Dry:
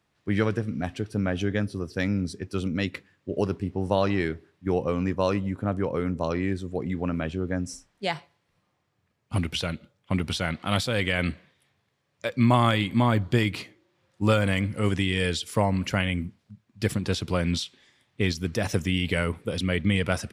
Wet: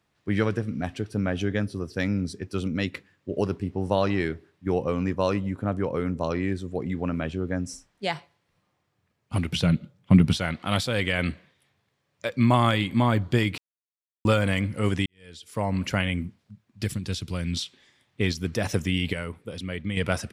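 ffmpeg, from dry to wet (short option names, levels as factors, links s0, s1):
-filter_complex "[0:a]asettb=1/sr,asplit=3[s0][s1][s2];[s0]atrim=end=9.514[s3];[s1]atrim=start=9.51:end=10.37,asetpts=PTS-STARTPTS,afade=t=in:d=0.004:c=qsin,afade=t=out:st=0.856:d=0.004:c=qsin,equalizer=f=160:w=0.93:g=13.5[s4];[s2]atrim=start=10.366[s5];[s3][s4]acrossfade=d=0.004:c1=hsin:c2=qsin[s6];[s6][s5]acrossfade=d=0.004:c1=qsin:c2=hsin,asettb=1/sr,asplit=3[s7][s8][s9];[s7]atrim=end=16.844[s10];[s8]atrim=start=16.84:end=17.57,asetpts=PTS-STARTPTS,afade=t=in:d=0.004:c=qsin,afade=t=out:st=0.726:d=0.004:c=qsin,equalizer=f=740:t=o:w=3:g=-11[s11];[s9]atrim=start=17.566[s12];[s10][s11]acrossfade=d=0.004:c1=hsin:c2=qsin[s13];[s13][s12]acrossfade=d=0.004:c1=qsin:c2=hsin,asplit=6[s14][s15][s16][s17][s18][s19];[s14]atrim=end=13.58,asetpts=PTS-STARTPTS,afade=t=out:st=13.576:d=0.004:c=hsin[s20];[s15]atrim=start=13.58:end=14.25,asetpts=PTS-STARTPTS,volume=0[s21];[s16]atrim=start=14.25:end=15.06,asetpts=PTS-STARTPTS,afade=t=in:d=0.004:c=hsin,afade=t=out:st=0.806:d=0.004:c=hsin[s22];[s17]atrim=start=15.06:end=19.132,asetpts=PTS-STARTPTS,afade=t=in:d=0.72:c=qua[s23];[s18]atrim=start=19.128:end=19.972,asetpts=PTS-STARTPTS,volume=0.447[s24];[s19]atrim=start=19.968[s25];[s20][s21][s22][s23]concat=n=4:v=0:a=1[s26];[s26][s24]acrossfade=d=0.004:c1=hsin:c2=hsin[s27];[s27][s25]acrossfade=d=0.004:c1=hsin:c2=hsin"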